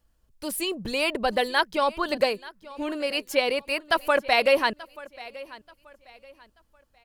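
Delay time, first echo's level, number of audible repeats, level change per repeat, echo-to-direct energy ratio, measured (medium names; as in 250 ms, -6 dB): 883 ms, -19.5 dB, 2, -10.0 dB, -19.0 dB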